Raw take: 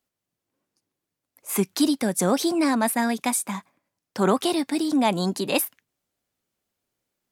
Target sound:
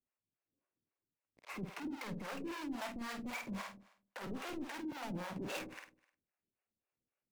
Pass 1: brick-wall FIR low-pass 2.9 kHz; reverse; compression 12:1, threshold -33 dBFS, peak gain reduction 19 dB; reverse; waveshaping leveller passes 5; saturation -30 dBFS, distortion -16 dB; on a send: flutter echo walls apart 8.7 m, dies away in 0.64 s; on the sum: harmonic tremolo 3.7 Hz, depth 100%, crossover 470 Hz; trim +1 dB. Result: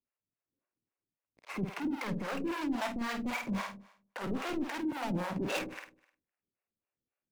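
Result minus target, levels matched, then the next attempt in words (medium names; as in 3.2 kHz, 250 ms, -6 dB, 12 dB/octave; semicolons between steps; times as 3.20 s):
saturation: distortion -6 dB
brick-wall FIR low-pass 2.9 kHz; reverse; compression 12:1, threshold -33 dBFS, peak gain reduction 19 dB; reverse; waveshaping leveller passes 5; saturation -39 dBFS, distortion -10 dB; on a send: flutter echo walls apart 8.7 m, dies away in 0.64 s; on the sum: harmonic tremolo 3.7 Hz, depth 100%, crossover 470 Hz; trim +1 dB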